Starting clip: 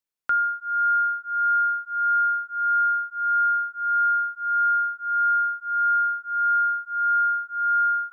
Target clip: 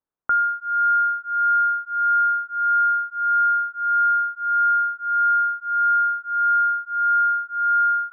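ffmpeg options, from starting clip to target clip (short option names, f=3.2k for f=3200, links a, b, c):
-af "acontrast=47,lowpass=f=1.4k:w=0.5412,lowpass=f=1.4k:w=1.3066"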